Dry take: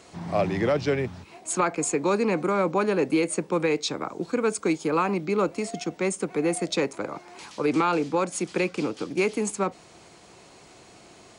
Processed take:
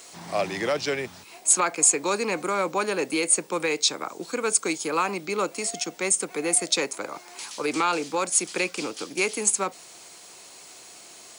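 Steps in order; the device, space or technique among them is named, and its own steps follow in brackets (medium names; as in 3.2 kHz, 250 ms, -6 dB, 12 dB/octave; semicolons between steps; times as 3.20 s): turntable without a phono preamp (RIAA curve recording; white noise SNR 36 dB)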